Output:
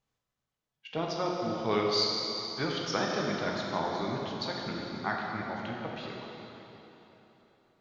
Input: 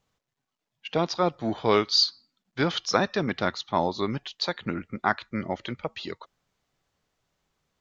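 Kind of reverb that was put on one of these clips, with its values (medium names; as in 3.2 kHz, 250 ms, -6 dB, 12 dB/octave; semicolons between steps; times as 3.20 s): plate-style reverb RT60 3.6 s, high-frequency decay 0.85×, DRR -2.5 dB; trim -9.5 dB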